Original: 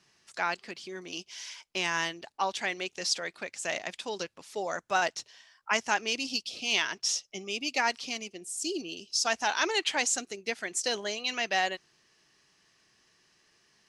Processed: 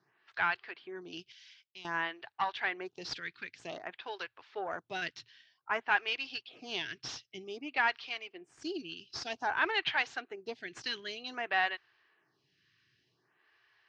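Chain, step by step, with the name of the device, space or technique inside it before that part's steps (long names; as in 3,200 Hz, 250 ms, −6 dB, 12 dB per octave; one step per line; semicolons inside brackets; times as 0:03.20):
vibe pedal into a guitar amplifier (phaser with staggered stages 0.53 Hz; tube saturation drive 19 dB, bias 0.45; loudspeaker in its box 81–4,000 Hz, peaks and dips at 120 Hz +8 dB, 210 Hz −10 dB, 550 Hz −8 dB, 1,600 Hz +5 dB)
0:01.32–0:01.85: guitar amp tone stack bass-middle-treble 5-5-5
level +1 dB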